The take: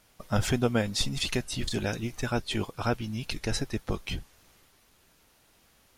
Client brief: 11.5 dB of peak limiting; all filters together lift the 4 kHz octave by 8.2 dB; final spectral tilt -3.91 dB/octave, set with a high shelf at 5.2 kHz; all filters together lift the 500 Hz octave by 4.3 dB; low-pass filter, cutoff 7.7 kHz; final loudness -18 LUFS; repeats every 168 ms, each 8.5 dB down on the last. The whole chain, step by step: low-pass 7.7 kHz; peaking EQ 500 Hz +5 dB; peaking EQ 4 kHz +7.5 dB; treble shelf 5.2 kHz +6 dB; peak limiter -19 dBFS; feedback delay 168 ms, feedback 38%, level -8.5 dB; trim +12 dB

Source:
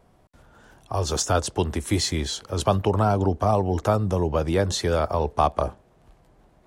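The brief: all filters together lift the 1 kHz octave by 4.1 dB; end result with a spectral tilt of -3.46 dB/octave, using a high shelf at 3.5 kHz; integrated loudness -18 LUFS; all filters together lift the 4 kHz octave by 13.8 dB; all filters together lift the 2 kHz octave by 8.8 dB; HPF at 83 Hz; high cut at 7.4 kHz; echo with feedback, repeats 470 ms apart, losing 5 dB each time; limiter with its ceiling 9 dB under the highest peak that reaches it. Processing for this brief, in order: high-pass 83 Hz; low-pass 7.4 kHz; peaking EQ 1 kHz +3 dB; peaking EQ 2 kHz +5.5 dB; treble shelf 3.5 kHz +9 dB; peaking EQ 4 kHz +9 dB; peak limiter -10 dBFS; feedback delay 470 ms, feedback 56%, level -5 dB; trim +2.5 dB

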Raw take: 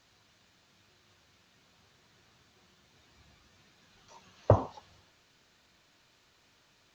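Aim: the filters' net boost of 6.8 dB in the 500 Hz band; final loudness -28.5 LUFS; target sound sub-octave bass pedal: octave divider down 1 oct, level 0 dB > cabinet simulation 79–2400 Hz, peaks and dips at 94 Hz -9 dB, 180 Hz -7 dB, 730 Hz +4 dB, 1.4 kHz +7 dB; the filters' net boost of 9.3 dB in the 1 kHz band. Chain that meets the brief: peaking EQ 500 Hz +4.5 dB; peaking EQ 1 kHz +7 dB; octave divider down 1 oct, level 0 dB; cabinet simulation 79–2400 Hz, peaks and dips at 94 Hz -9 dB, 180 Hz -7 dB, 730 Hz +4 dB, 1.4 kHz +7 dB; trim -4 dB

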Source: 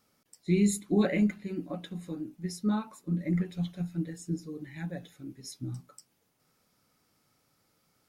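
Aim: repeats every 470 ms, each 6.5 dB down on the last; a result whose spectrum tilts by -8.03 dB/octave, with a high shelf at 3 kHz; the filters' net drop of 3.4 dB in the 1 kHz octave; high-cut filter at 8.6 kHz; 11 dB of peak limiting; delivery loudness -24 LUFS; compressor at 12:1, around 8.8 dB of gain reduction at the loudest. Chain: low-pass 8.6 kHz; peaking EQ 1 kHz -4 dB; treble shelf 3 kHz -5.5 dB; compression 12:1, threshold -29 dBFS; peak limiter -34 dBFS; feedback delay 470 ms, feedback 47%, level -6.5 dB; trim +18 dB

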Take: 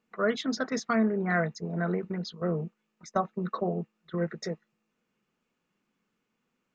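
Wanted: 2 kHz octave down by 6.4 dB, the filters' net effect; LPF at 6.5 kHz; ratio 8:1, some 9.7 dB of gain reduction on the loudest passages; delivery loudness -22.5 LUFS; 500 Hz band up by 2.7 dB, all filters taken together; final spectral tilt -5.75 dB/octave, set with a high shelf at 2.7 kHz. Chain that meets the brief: low-pass 6.5 kHz; peaking EQ 500 Hz +4 dB; peaking EQ 2 kHz -6 dB; treble shelf 2.7 kHz -8.5 dB; compression 8:1, threshold -30 dBFS; trim +14 dB

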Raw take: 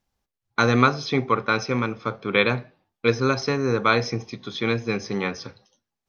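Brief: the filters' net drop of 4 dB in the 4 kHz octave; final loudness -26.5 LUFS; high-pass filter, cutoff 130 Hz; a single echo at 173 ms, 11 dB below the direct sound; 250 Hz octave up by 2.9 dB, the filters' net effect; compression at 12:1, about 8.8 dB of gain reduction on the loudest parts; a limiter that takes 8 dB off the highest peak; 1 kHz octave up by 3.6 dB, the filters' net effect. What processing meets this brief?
high-pass 130 Hz; peaking EQ 250 Hz +3.5 dB; peaking EQ 1 kHz +5 dB; peaking EQ 4 kHz -5 dB; compression 12:1, threshold -18 dBFS; peak limiter -15 dBFS; delay 173 ms -11 dB; trim +1 dB

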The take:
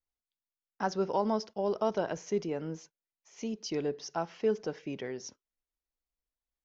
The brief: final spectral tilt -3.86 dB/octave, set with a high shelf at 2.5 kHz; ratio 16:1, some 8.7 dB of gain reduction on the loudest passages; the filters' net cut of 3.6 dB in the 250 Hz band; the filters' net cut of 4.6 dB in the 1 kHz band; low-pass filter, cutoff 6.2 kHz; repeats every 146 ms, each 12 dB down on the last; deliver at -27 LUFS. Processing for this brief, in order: low-pass 6.2 kHz; peaking EQ 250 Hz -4.5 dB; peaking EQ 1 kHz -6.5 dB; treble shelf 2.5 kHz +5 dB; compression 16:1, threshold -35 dBFS; feedback delay 146 ms, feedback 25%, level -12 dB; trim +14.5 dB

